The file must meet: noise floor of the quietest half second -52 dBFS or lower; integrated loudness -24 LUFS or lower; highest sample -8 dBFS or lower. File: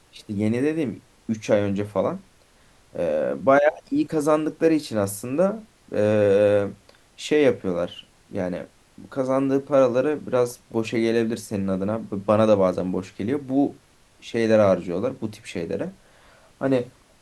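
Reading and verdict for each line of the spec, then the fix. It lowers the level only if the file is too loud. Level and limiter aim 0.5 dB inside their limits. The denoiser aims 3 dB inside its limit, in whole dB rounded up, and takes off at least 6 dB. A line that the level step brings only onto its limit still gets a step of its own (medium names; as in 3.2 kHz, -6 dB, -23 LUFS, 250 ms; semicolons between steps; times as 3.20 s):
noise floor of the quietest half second -56 dBFS: pass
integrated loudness -23.0 LUFS: fail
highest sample -5.0 dBFS: fail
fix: trim -1.5 dB; peak limiter -8.5 dBFS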